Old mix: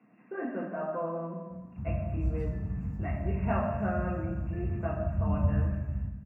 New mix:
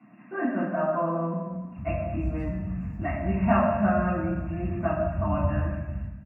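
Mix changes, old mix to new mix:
speech: send +9.5 dB; master: add bell 440 Hz -14.5 dB 0.23 oct

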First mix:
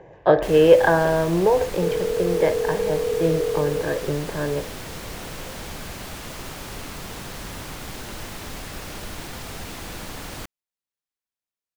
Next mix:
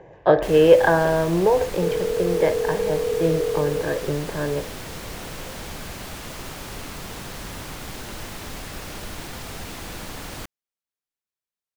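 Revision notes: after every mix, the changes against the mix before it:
none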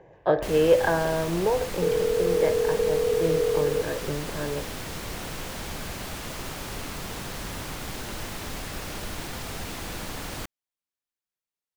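speech -6.0 dB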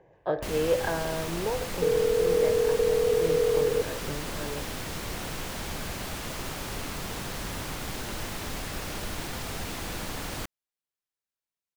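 speech -6.5 dB

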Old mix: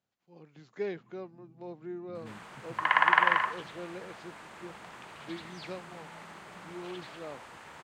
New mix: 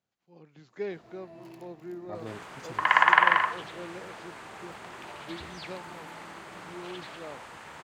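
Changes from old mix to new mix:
first sound: remove Butterworth band-pass 170 Hz, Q 1.5; second sound +3.5 dB

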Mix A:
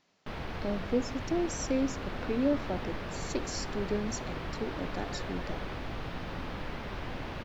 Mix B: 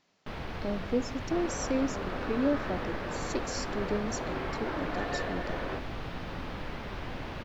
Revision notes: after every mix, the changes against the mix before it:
second sound +10.5 dB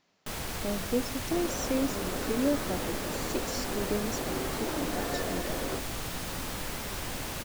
first sound: remove air absorption 300 m; second sound: add tilt shelf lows +5.5 dB, about 670 Hz

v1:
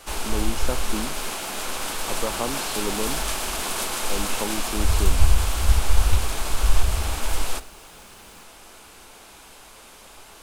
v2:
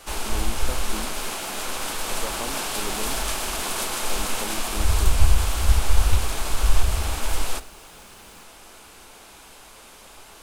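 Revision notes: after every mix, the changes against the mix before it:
speech -6.5 dB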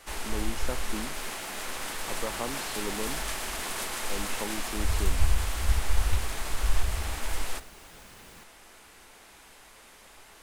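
first sound -7.0 dB; master: add bell 1900 Hz +7 dB 0.39 oct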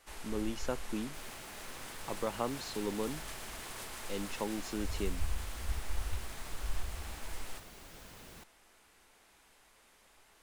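first sound -11.5 dB

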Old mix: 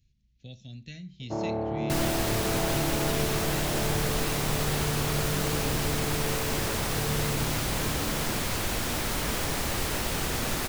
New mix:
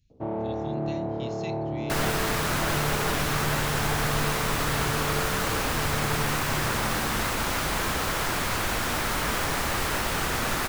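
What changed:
first sound: entry -1.10 s; second sound: add bell 1300 Hz +7.5 dB 1.7 oct

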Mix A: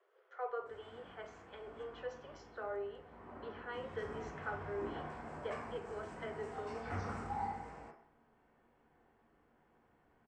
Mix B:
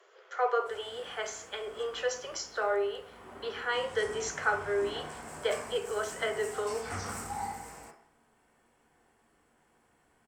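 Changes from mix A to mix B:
speech +10.0 dB; master: remove tape spacing loss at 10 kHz 31 dB

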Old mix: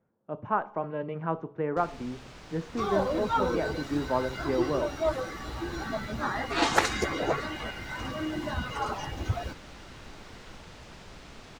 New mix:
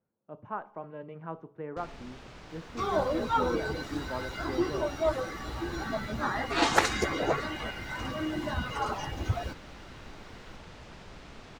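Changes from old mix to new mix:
speech -9.0 dB; first sound: add high shelf 5100 Hz -7 dB

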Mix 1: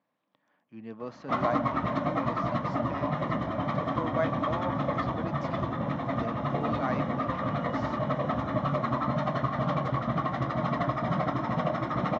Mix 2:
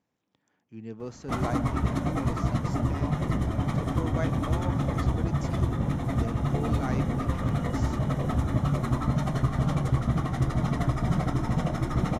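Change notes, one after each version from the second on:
master: remove speaker cabinet 180–4400 Hz, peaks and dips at 400 Hz -7 dB, 600 Hz +8 dB, 1100 Hz +8 dB, 1800 Hz +3 dB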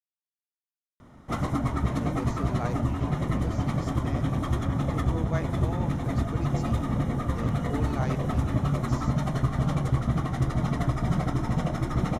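speech: entry +1.15 s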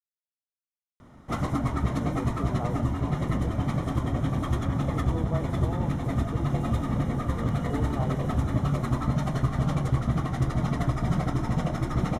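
speech: add polynomial smoothing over 65 samples

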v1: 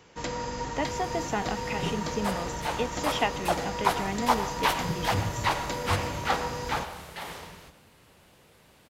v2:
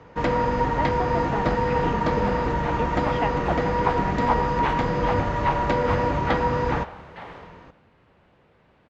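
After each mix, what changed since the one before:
first sound +11.5 dB; master: add LPF 2000 Hz 12 dB/oct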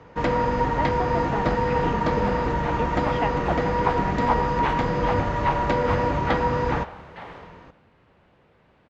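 none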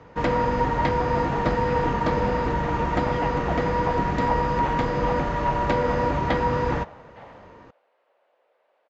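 speech -5.0 dB; second sound: add ladder high-pass 500 Hz, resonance 55%

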